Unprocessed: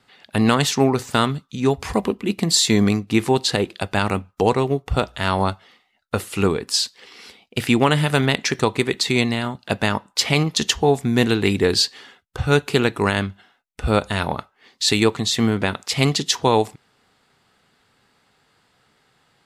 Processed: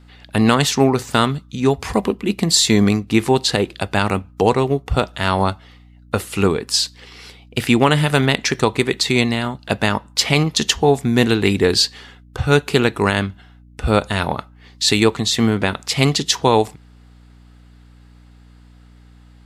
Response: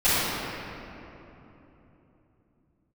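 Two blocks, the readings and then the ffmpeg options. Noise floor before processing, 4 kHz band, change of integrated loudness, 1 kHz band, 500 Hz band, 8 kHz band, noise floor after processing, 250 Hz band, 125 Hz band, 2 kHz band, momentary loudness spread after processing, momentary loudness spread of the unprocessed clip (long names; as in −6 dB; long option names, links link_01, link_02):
−65 dBFS, +2.5 dB, +2.5 dB, +2.5 dB, +2.5 dB, +2.5 dB, −46 dBFS, +2.5 dB, +2.5 dB, +2.5 dB, 8 LU, 8 LU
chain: -af "aeval=exprs='val(0)+0.00447*(sin(2*PI*60*n/s)+sin(2*PI*2*60*n/s)/2+sin(2*PI*3*60*n/s)/3+sin(2*PI*4*60*n/s)/4+sin(2*PI*5*60*n/s)/5)':channel_layout=same,volume=2.5dB"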